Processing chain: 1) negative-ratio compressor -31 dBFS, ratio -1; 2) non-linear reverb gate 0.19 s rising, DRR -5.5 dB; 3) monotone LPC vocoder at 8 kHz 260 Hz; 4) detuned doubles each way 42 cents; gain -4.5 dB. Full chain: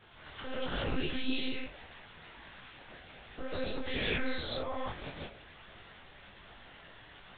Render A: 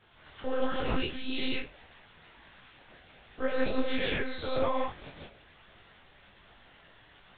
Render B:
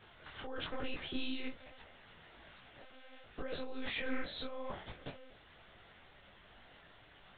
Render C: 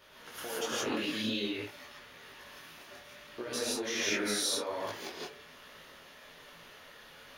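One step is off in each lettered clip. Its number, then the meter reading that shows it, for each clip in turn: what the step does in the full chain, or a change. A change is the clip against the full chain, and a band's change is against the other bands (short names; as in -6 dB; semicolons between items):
1, momentary loudness spread change -2 LU; 2, 125 Hz band -4.5 dB; 3, 125 Hz band -8.5 dB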